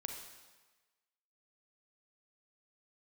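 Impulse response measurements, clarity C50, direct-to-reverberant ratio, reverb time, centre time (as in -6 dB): 4.0 dB, 3.0 dB, 1.3 s, 40 ms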